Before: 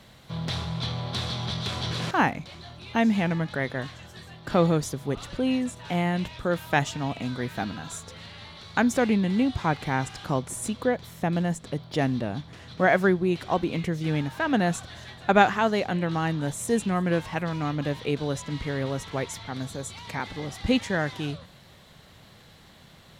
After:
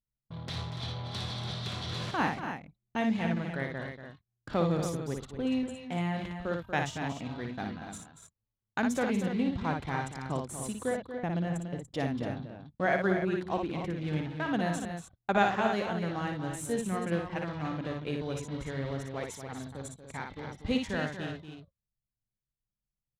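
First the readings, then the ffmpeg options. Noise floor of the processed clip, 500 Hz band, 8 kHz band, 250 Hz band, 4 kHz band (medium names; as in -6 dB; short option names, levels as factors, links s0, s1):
under -85 dBFS, -6.0 dB, -7.0 dB, -6.0 dB, -7.0 dB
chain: -af "agate=range=0.141:threshold=0.0126:ratio=16:detection=peak,anlmdn=1.58,aecho=1:1:58.31|236.2|288.6:0.562|0.316|0.355,volume=0.398"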